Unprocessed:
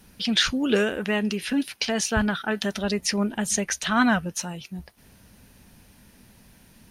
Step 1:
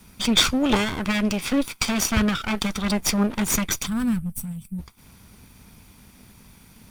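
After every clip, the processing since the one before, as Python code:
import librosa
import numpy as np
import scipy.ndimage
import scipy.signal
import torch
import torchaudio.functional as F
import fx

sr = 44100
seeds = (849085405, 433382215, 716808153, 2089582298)

y = fx.lower_of_two(x, sr, delay_ms=0.86)
y = fx.spec_box(y, sr, start_s=3.86, length_s=0.93, low_hz=250.0, high_hz=7500.0, gain_db=-18)
y = y * 10.0 ** (4.5 / 20.0)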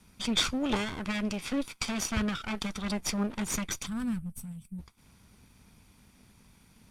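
y = scipy.signal.sosfilt(scipy.signal.butter(2, 11000.0, 'lowpass', fs=sr, output='sos'), x)
y = y * 10.0 ** (-9.0 / 20.0)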